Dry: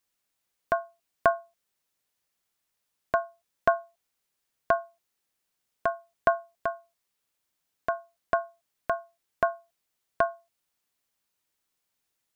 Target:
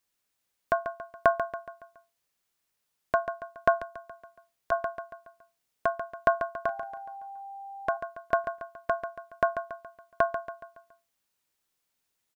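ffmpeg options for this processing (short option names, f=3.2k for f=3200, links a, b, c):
-filter_complex "[0:a]aecho=1:1:140|280|420|560|700:0.335|0.154|0.0709|0.0326|0.015,asettb=1/sr,asplit=3[a][b][c];[a]atrim=end=3.784[d];[b]atrim=start=3.78:end=4.72,asetpts=PTS-STARTPTS,afade=t=in:d=0.004:c=qsin,afade=t=out:st=0.936:d=0.004:c=qsin,acrossover=split=120|3000[e][f][g];[f]acompressor=threshold=-40dB:ratio=2.5[h];[e][h][g]amix=inputs=3:normalize=0[i];[c]atrim=start=4.716[j];[d][i]acrossfade=d=0.004:c1=hsin:c2=qsin[k];[k][j]acrossfade=d=0.004:c1=qsin:c2=hsin,asettb=1/sr,asplit=3[l][m][n];[l]atrim=end=6.664[o];[m]atrim=start=6.66:end=7.97,asetpts=PTS-STARTPTS,afade=t=in:d=0.004:c=qsin,afade=t=out:st=1.306:d=0.004:c=qsin,aeval=exprs='val(0)+0.0112*sin(2*PI*790*n/s)':c=same[p];[n]atrim=start=7.966[q];[o][p]acrossfade=d=0.004:c1=hsin:c2=qsin[r];[r][q]acrossfade=d=0.004:c1=qsin:c2=hsin"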